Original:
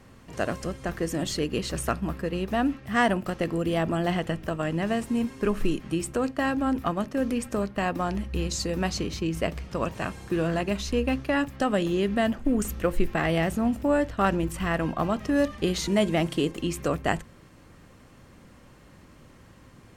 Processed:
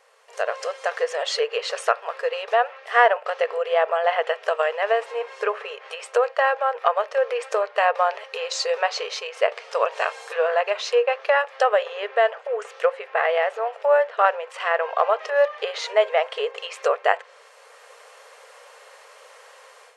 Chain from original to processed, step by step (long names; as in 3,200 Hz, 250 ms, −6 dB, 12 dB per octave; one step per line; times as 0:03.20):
treble cut that deepens with the level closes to 2,200 Hz, closed at −22 dBFS
automatic gain control gain up to 11.5 dB
linear-phase brick-wall band-pass 420–12,000 Hz
level −1 dB